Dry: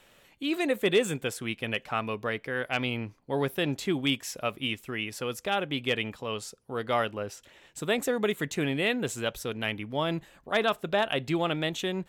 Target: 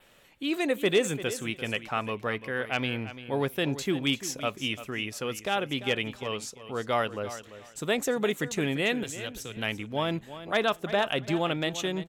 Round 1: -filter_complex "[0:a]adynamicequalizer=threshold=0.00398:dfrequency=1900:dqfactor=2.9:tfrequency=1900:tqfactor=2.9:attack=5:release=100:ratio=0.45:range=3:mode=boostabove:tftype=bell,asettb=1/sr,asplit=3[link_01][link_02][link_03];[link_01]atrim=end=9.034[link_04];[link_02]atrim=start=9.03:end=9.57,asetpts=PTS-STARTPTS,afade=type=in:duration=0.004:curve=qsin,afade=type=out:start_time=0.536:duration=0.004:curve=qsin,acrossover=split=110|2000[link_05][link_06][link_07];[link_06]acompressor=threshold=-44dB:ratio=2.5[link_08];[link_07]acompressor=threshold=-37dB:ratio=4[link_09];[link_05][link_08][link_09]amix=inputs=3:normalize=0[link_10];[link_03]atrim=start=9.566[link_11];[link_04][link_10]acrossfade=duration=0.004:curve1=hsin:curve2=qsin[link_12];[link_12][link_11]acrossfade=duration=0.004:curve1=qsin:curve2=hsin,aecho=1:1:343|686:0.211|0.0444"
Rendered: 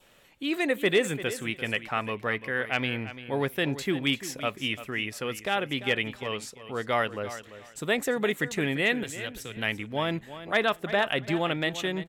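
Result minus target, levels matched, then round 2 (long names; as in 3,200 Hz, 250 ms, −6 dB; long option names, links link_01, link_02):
8,000 Hz band −3.5 dB
-filter_complex "[0:a]adynamicequalizer=threshold=0.00398:dfrequency=6300:dqfactor=2.9:tfrequency=6300:tqfactor=2.9:attack=5:release=100:ratio=0.45:range=3:mode=boostabove:tftype=bell,asettb=1/sr,asplit=3[link_01][link_02][link_03];[link_01]atrim=end=9.034[link_04];[link_02]atrim=start=9.03:end=9.57,asetpts=PTS-STARTPTS,afade=type=in:duration=0.004:curve=qsin,afade=type=out:start_time=0.536:duration=0.004:curve=qsin,acrossover=split=110|2000[link_05][link_06][link_07];[link_06]acompressor=threshold=-44dB:ratio=2.5[link_08];[link_07]acompressor=threshold=-37dB:ratio=4[link_09];[link_05][link_08][link_09]amix=inputs=3:normalize=0[link_10];[link_03]atrim=start=9.566[link_11];[link_04][link_10]acrossfade=duration=0.004:curve1=hsin:curve2=qsin[link_12];[link_12][link_11]acrossfade=duration=0.004:curve1=qsin:curve2=hsin,aecho=1:1:343|686:0.211|0.0444"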